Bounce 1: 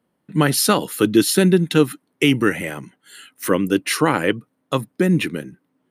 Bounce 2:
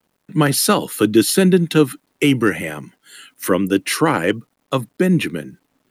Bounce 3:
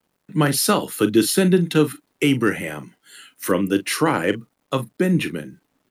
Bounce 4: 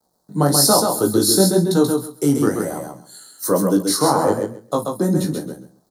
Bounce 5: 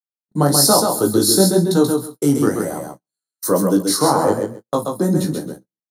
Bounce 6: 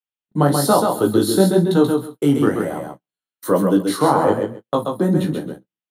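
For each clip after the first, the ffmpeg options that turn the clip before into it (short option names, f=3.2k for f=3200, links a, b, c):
-filter_complex "[0:a]acrossover=split=190|1400|7400[a][b][c][d];[c]asoftclip=type=tanh:threshold=-15dB[e];[a][b][e][d]amix=inputs=4:normalize=0,acrusher=bits=10:mix=0:aa=0.000001,volume=1.5dB"
-filter_complex "[0:a]asplit=2[a][b];[b]adelay=40,volume=-12.5dB[c];[a][c]amix=inputs=2:normalize=0,volume=-3dB"
-filter_complex "[0:a]firequalizer=gain_entry='entry(350,0);entry(730,8);entry(2600,-27);entry(4100,6)':delay=0.05:min_phase=1,flanger=delay=16:depth=5.1:speed=1.1,asplit=2[a][b];[b]aecho=0:1:133|266|399:0.596|0.101|0.0172[c];[a][c]amix=inputs=2:normalize=0,volume=3dB"
-af "agate=range=-47dB:threshold=-33dB:ratio=16:detection=peak,volume=1dB"
-af "highshelf=f=4k:t=q:w=3:g=-9"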